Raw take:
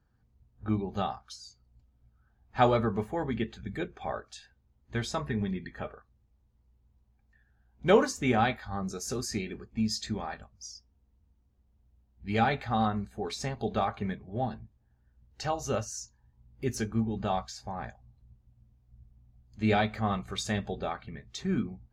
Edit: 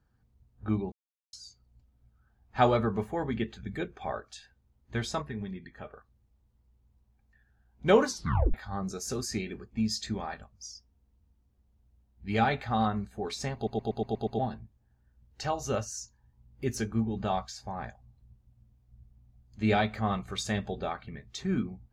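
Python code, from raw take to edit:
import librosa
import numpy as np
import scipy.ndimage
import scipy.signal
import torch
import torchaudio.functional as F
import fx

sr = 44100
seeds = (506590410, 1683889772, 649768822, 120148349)

y = fx.edit(x, sr, fx.silence(start_s=0.92, length_s=0.41),
    fx.clip_gain(start_s=5.22, length_s=0.71, db=-6.0),
    fx.tape_stop(start_s=8.08, length_s=0.46),
    fx.stutter_over(start_s=13.55, slice_s=0.12, count=7), tone=tone)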